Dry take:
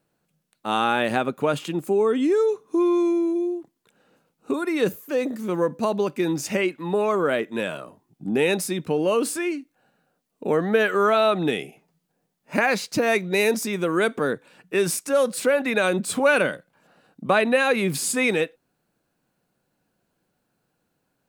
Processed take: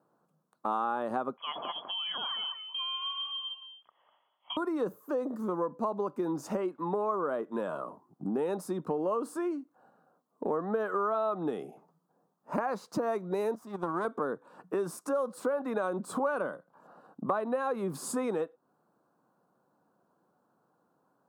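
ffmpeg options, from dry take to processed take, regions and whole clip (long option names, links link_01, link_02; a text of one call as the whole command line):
ffmpeg -i in.wav -filter_complex "[0:a]asettb=1/sr,asplit=3[link_01][link_02][link_03];[link_01]atrim=end=1.374[link_04];[link_02]atrim=start=1.37:end=4.57,asetpts=PTS-STARTPTS,afade=type=in:duration=0.004:curve=qsin,afade=type=out:start_time=3.196:duration=0.004:curve=qsin,aecho=1:1:199:0.335,atrim=end_sample=141120,lowpass=frequency=3000:width_type=q:width=0.5098,lowpass=frequency=3000:width_type=q:width=0.6013,lowpass=frequency=3000:width_type=q:width=0.9,lowpass=frequency=3000:width_type=q:width=2.563,afreqshift=-3500[link_05];[link_03]atrim=start=4.566[link_06];[link_04][link_05]acrossfade=duration=0.004:curve1=hsin:curve2=qsin[link_07];[link_07][link_06]acrossfade=duration=0.004:curve1=qsin:curve2=hsin,asettb=1/sr,asplit=3[link_08][link_09][link_10];[link_08]atrim=end=13.554[link_11];[link_09]atrim=start=13.55:end=14.05,asetpts=PTS-STARTPTS,afade=type=in:duration=0.004:curve=qsin,afade=type=out:start_time=0.496:duration=0.004:curve=qsin,aeval=exprs='if(lt(val(0),0),0.251*val(0),val(0))':channel_layout=same,agate=range=-8dB:threshold=-28dB:ratio=16:release=100:detection=peak,equalizer=frequency=470:width=6.4:gain=-13.5[link_12];[link_10]atrim=start=14.046[link_13];[link_11][link_12]acrossfade=duration=0.004:curve1=hsin:curve2=qsin[link_14];[link_14][link_13]acrossfade=duration=0.004:curve1=qsin:curve2=hsin,highpass=180,highshelf=frequency=1600:width_type=q:width=3:gain=-12,acompressor=threshold=-34dB:ratio=3,volume=1.5dB" out.wav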